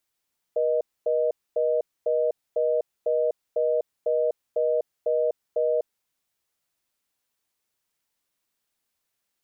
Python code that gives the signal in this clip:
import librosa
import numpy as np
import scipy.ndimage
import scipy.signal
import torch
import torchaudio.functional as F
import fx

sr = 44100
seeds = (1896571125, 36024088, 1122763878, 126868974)

y = fx.call_progress(sr, length_s=5.28, kind='reorder tone', level_db=-23.0)